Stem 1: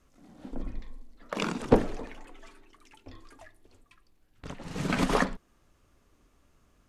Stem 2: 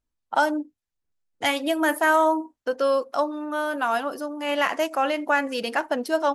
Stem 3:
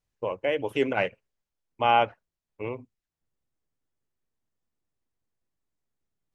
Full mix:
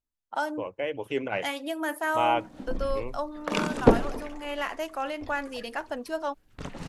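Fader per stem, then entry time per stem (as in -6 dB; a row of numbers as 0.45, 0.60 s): +3.0, -8.5, -4.5 dB; 2.15, 0.00, 0.35 s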